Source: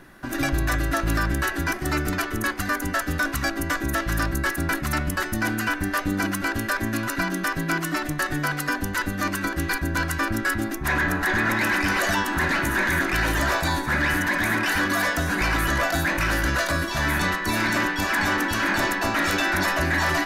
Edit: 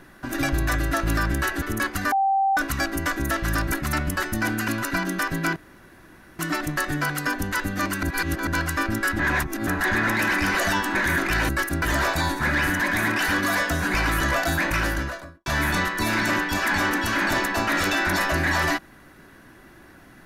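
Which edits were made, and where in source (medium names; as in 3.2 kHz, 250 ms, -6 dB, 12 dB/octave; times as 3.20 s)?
1.62–2.26 s: delete
2.76–3.21 s: bleep 780 Hz -17.5 dBFS
4.36–4.72 s: move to 13.32 s
5.68–6.93 s: delete
7.81 s: insert room tone 0.83 s
9.45–9.89 s: reverse
10.61–11.09 s: reverse
12.37–12.78 s: delete
16.22–16.93 s: studio fade out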